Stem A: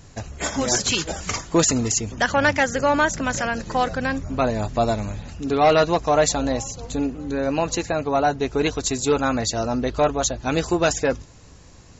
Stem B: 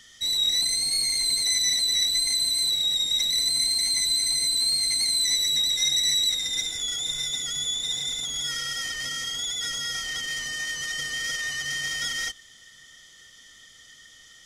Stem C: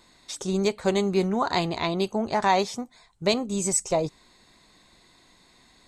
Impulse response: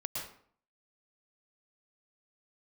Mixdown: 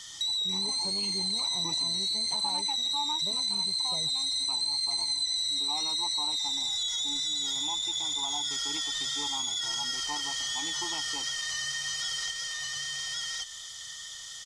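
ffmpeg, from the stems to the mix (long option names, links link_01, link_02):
-filter_complex "[0:a]asplit=3[link_01][link_02][link_03];[link_01]bandpass=frequency=300:width_type=q:width=8,volume=0dB[link_04];[link_02]bandpass=frequency=870:width_type=q:width=8,volume=-6dB[link_05];[link_03]bandpass=frequency=2240:width_type=q:width=8,volume=-9dB[link_06];[link_04][link_05][link_06]amix=inputs=3:normalize=0,adelay=100,volume=-3dB[link_07];[1:a]acrossover=split=6600[link_08][link_09];[link_09]acompressor=threshold=-46dB:ratio=4:attack=1:release=60[link_10];[link_08][link_10]amix=inputs=2:normalize=0,alimiter=level_in=2dB:limit=-24dB:level=0:latency=1:release=22,volume=-2dB,volume=-2dB,asplit=2[link_11][link_12];[link_12]volume=-3dB[link_13];[2:a]bandpass=frequency=190:width_type=q:width=1.6:csg=0,volume=-1.5dB[link_14];[link_13]aecho=0:1:1122:1[link_15];[link_07][link_11][link_14][link_15]amix=inputs=4:normalize=0,equalizer=frequency=125:width_type=o:width=1:gain=6,equalizer=frequency=250:width_type=o:width=1:gain=-11,equalizer=frequency=1000:width_type=o:width=1:gain=12,equalizer=frequency=2000:width_type=o:width=1:gain=-3,equalizer=frequency=4000:width_type=o:width=1:gain=10,equalizer=frequency=8000:width_type=o:width=1:gain=11,acompressor=threshold=-33dB:ratio=2.5"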